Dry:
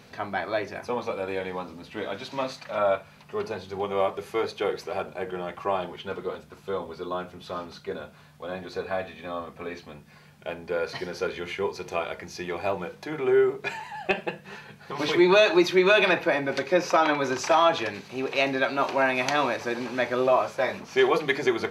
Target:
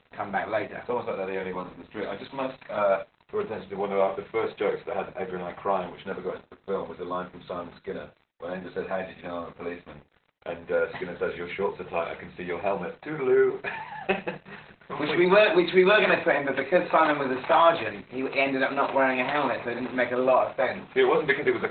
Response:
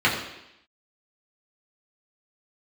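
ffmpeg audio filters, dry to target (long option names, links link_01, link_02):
-filter_complex "[0:a]aeval=exprs='val(0)*gte(abs(val(0)),0.00596)':channel_layout=same,asplit=2[link_01][link_02];[1:a]atrim=start_sample=2205,atrim=end_sample=3969[link_03];[link_02][link_03]afir=irnorm=-1:irlink=0,volume=-23dB[link_04];[link_01][link_04]amix=inputs=2:normalize=0" -ar 48000 -c:a libopus -b:a 8k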